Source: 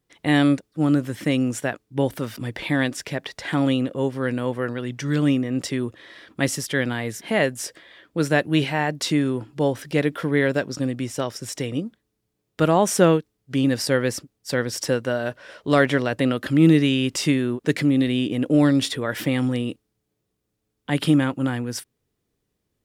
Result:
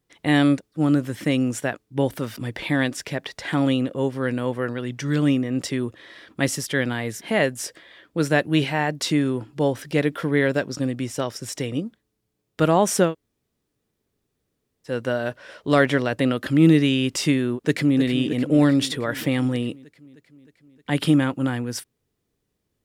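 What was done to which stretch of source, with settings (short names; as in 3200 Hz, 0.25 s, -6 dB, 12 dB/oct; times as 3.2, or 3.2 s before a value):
13.07–14.92 room tone, crossfade 0.16 s
17.56–17.98 echo throw 0.31 s, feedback 70%, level -10.5 dB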